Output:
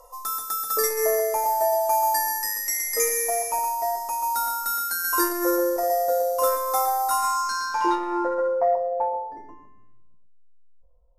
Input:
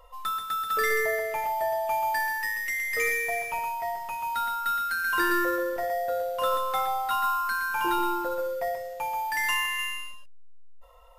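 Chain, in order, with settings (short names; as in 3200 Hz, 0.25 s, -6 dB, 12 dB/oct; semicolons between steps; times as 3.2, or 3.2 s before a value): band shelf 550 Hz +10.5 dB 2.4 oct; on a send at -18 dB: reverb RT60 0.45 s, pre-delay 77 ms; on the sum: low-pass sweep 12000 Hz -> 160 Hz, 7.05–10; resonant high shelf 4300 Hz +11.5 dB, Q 3; core saturation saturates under 300 Hz; gain -4 dB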